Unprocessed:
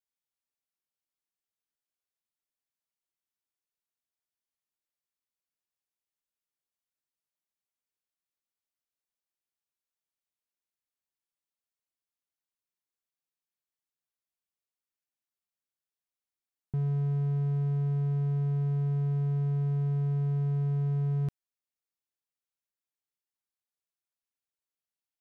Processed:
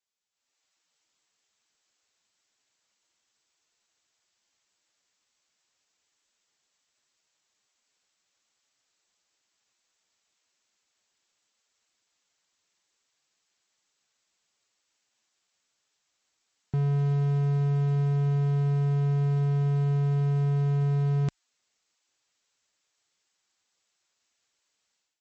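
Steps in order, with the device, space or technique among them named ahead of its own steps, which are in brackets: tilt EQ +2 dB/octave; low-bitrate web radio (level rider gain up to 14 dB; peak limiter -21.5 dBFS, peak gain reduction 7 dB; trim +2.5 dB; MP3 32 kbps 32 kHz)

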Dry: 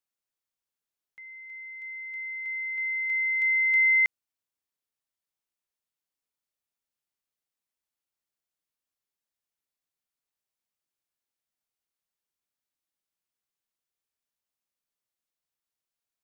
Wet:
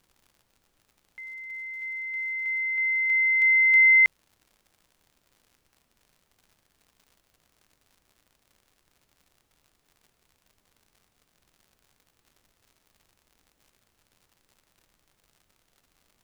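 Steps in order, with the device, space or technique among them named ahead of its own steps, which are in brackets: vinyl LP (crackle 110 per s -52 dBFS; pink noise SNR 42 dB); trim +4.5 dB

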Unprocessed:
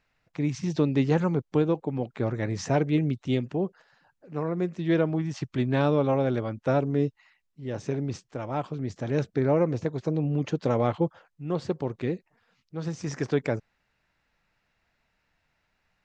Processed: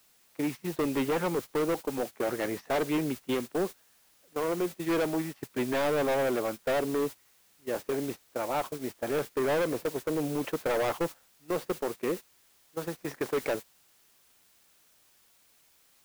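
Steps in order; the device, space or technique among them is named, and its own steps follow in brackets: aircraft radio (band-pass 370–2700 Hz; hard clipper -29 dBFS, distortion -7 dB; white noise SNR 14 dB; gate -39 dBFS, range -18 dB); trim +4.5 dB

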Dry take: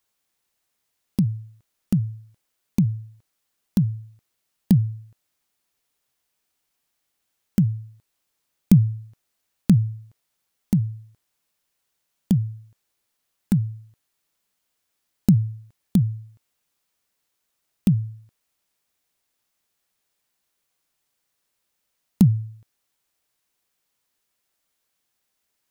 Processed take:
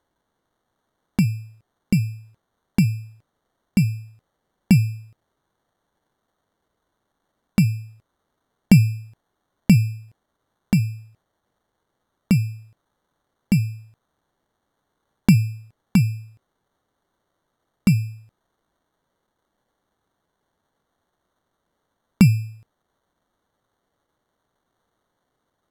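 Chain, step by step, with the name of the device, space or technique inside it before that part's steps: crushed at another speed (playback speed 1.25×; sample-and-hold 14×; playback speed 0.8×); trim +2 dB

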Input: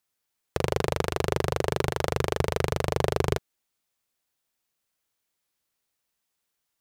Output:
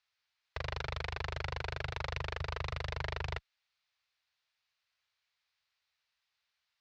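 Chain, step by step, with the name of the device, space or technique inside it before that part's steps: scooped metal amplifier (valve stage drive 29 dB, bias 0.75; cabinet simulation 77–4300 Hz, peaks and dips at 180 Hz -10 dB, 280 Hz -4 dB, 3.2 kHz -4 dB; amplifier tone stack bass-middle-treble 10-0-10); trim +12.5 dB

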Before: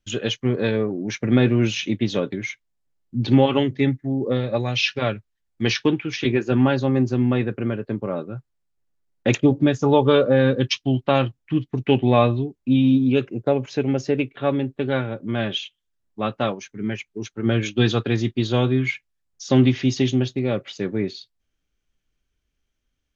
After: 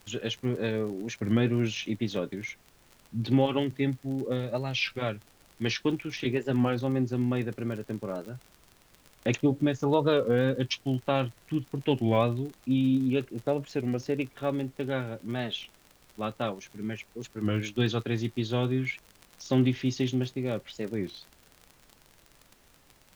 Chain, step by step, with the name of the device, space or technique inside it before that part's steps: warped LP (warped record 33 1/3 rpm, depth 160 cents; crackle 44 per s -28 dBFS; pink noise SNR 31 dB); trim -8 dB

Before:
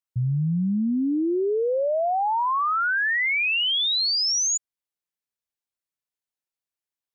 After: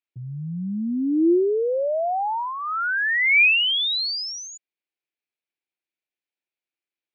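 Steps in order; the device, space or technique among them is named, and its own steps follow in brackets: kitchen radio (cabinet simulation 230–4400 Hz, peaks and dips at 340 Hz +8 dB, 1.1 kHz -8 dB, 2.4 kHz +9 dB)

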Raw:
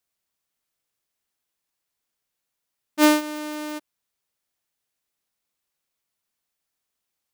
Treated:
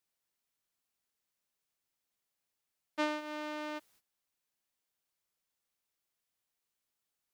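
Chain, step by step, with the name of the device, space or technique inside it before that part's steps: baby monitor (band-pass 400–3700 Hz; compression, threshold -24 dBFS, peak gain reduction 11 dB; white noise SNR 24 dB; gate -59 dBFS, range -16 dB); trim -5 dB

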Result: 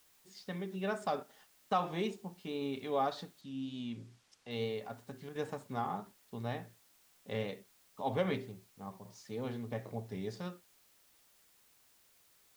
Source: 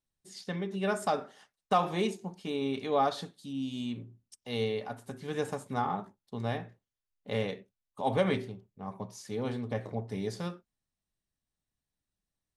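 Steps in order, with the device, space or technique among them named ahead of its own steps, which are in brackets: worn cassette (low-pass 6.2 kHz; wow and flutter; level dips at 1.23/5.29/8.99 s, 62 ms -8 dB; white noise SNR 27 dB); 3.41–4.51 s: low-pass 6.9 kHz 12 dB/octave; trim -5.5 dB

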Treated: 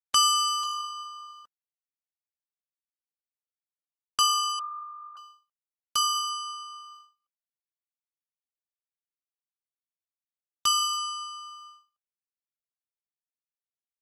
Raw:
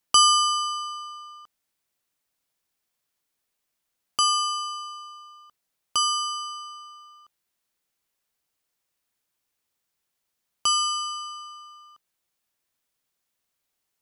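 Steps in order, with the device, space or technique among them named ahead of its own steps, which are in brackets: 4.59–5.17 s: steep low-pass 1.3 kHz 96 dB/octave; video call (high-pass 160 Hz 6 dB/octave; level rider gain up to 3 dB; gate -43 dBFS, range -32 dB; trim -4.5 dB; Opus 16 kbps 48 kHz)

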